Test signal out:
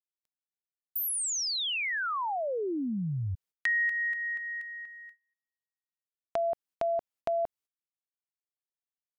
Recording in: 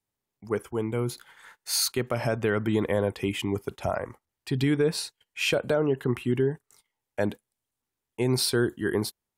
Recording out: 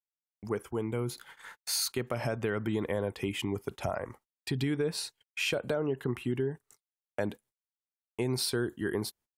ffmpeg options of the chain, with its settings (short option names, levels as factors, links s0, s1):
-af "agate=range=0.0112:threshold=0.00251:ratio=16:detection=peak,acompressor=threshold=0.0141:ratio=2,volume=1.33"